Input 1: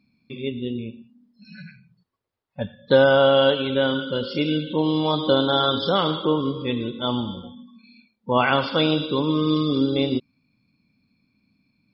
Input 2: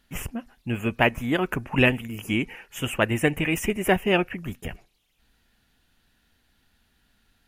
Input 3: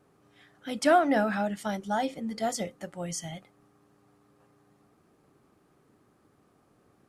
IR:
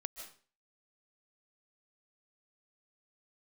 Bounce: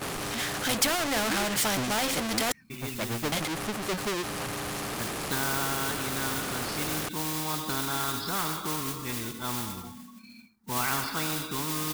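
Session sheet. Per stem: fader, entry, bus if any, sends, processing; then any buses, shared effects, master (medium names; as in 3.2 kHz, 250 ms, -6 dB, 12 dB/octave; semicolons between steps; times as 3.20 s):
-3.5 dB, 2.40 s, no bus, no send, static phaser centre 1.3 kHz, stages 4; modulation noise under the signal 17 dB
-8.5 dB, 0.00 s, bus A, no send, self-modulated delay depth 0.45 ms; spectral contrast expander 4:1
+2.5 dB, 0.00 s, muted 2.52–3.32 s, bus A, no send, gate with hold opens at -59 dBFS
bus A: 0.0 dB, power-law waveshaper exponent 0.5; compression, threshold -19 dBFS, peak gain reduction 6.5 dB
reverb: none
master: spectrum-flattening compressor 2:1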